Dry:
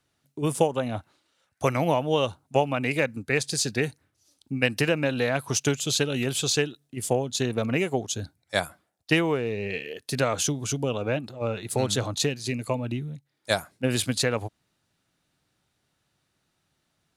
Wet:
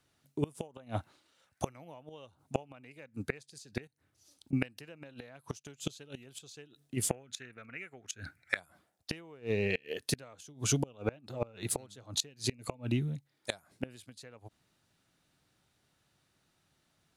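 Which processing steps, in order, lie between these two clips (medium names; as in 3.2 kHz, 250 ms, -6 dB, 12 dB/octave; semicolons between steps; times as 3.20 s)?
3.87–4.53 s: compression 16:1, threshold -48 dBFS, peak gain reduction 18.5 dB; 7.09–8.57 s: high-order bell 1.8 kHz +15.5 dB 1.2 oct; inverted gate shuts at -17 dBFS, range -27 dB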